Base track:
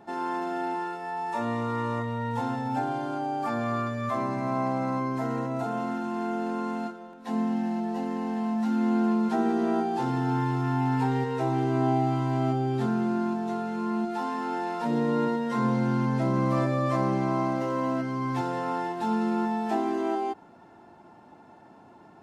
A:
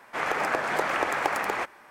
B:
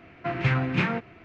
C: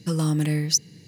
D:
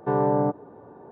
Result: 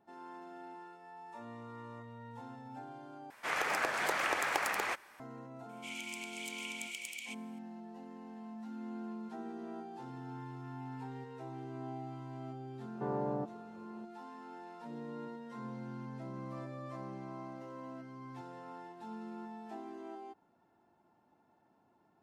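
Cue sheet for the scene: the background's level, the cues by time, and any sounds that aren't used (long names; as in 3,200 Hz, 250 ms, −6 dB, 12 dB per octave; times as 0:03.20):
base track −19 dB
0:03.30: overwrite with A −9.5 dB + high-shelf EQ 2,000 Hz +10 dB
0:05.69: mix in A −1 dB + Chebyshev high-pass with heavy ripple 2,200 Hz, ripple 9 dB
0:12.94: mix in D −14 dB
not used: B, C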